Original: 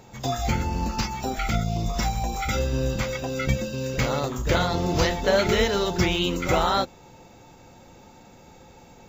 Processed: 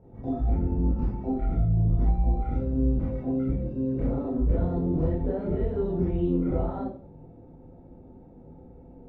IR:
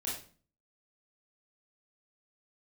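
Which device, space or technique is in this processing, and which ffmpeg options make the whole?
television next door: -filter_complex "[0:a]acompressor=threshold=-23dB:ratio=4,lowpass=450[link_01];[1:a]atrim=start_sample=2205[link_02];[link_01][link_02]afir=irnorm=-1:irlink=0"

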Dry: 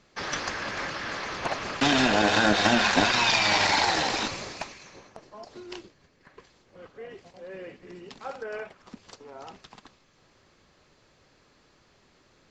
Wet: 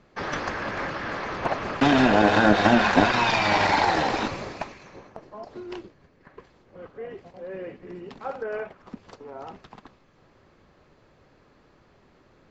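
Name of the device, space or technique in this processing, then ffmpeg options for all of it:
through cloth: -af "highshelf=frequency=3000:gain=-17,volume=5.5dB"

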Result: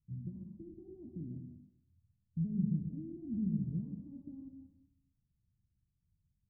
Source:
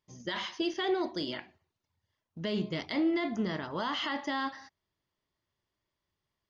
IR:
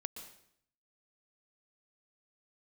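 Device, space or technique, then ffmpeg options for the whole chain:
club heard from the street: -filter_complex "[0:a]alimiter=level_in=6dB:limit=-24dB:level=0:latency=1:release=31,volume=-6dB,lowpass=frequency=170:width=0.5412,lowpass=frequency=170:width=1.3066[link_01];[1:a]atrim=start_sample=2205[link_02];[link_01][link_02]afir=irnorm=-1:irlink=0,volume=14dB"

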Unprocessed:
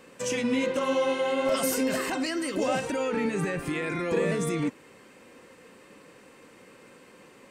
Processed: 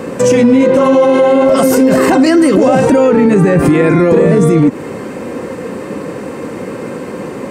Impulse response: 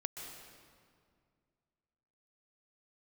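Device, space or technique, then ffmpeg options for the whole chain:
mastering chain: -af "highpass=58,equalizer=frequency=3000:width_type=o:width=0.92:gain=-4,acompressor=threshold=-30dB:ratio=2,tiltshelf=frequency=1100:gain=6.5,asoftclip=type=hard:threshold=-18.5dB,alimiter=level_in=27dB:limit=-1dB:release=50:level=0:latency=1,volume=-1dB"

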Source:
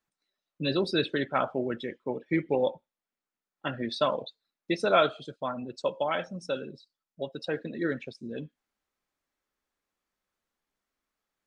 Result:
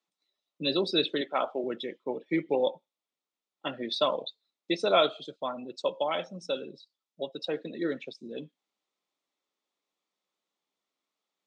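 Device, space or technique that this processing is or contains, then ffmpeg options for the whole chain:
television speaker: -filter_complex "[0:a]highpass=frequency=180:width=0.5412,highpass=frequency=180:width=1.3066,equalizer=frequency=230:width_type=q:width=4:gain=-5,equalizer=frequency=1600:width_type=q:width=4:gain=-10,equalizer=frequency=3600:width_type=q:width=4:gain=6,lowpass=frequency=8100:width=0.5412,lowpass=frequency=8100:width=1.3066,asettb=1/sr,asplit=3[link_01][link_02][link_03];[link_01]atrim=end=1.214[link_04];[link_02]atrim=start=1.21:end=1.64,asetpts=PTS-STARTPTS,afade=type=in:duration=0.004:curve=qsin,afade=type=out:start_time=0.426:duration=0.004:curve=qsin,highpass=290[link_05];[link_03]atrim=start=1.636[link_06];[link_04][link_05]acrossfade=duration=0.004:curve1=hsin:curve2=qsin[link_07];[link_07][link_06]acrossfade=duration=0.004:curve1=qsin:curve2=hsin"

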